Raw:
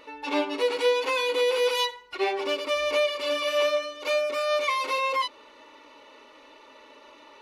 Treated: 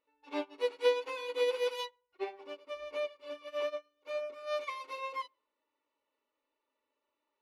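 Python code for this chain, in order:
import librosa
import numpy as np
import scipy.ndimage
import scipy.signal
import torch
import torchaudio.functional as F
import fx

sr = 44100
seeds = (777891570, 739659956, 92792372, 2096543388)

y = fx.high_shelf(x, sr, hz=2400.0, db=fx.steps((0.0, -3.5), (1.88, -10.5), (4.46, -3.5)))
y = fx.echo_filtered(y, sr, ms=120, feedback_pct=31, hz=1200.0, wet_db=-14.0)
y = fx.upward_expand(y, sr, threshold_db=-40.0, expansion=2.5)
y = y * librosa.db_to_amplitude(-3.0)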